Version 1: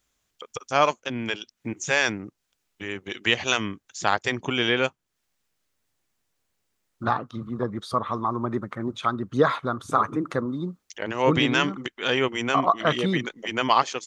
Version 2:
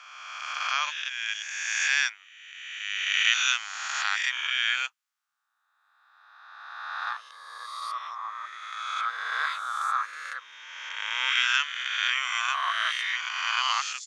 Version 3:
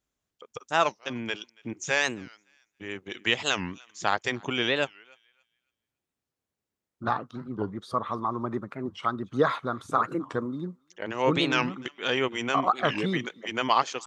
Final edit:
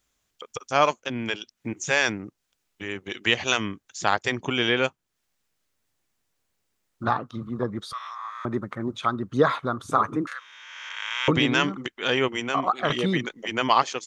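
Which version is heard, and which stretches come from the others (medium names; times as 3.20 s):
1
7.93–8.45 s: from 2
10.27–11.28 s: from 2
12.40–12.90 s: from 3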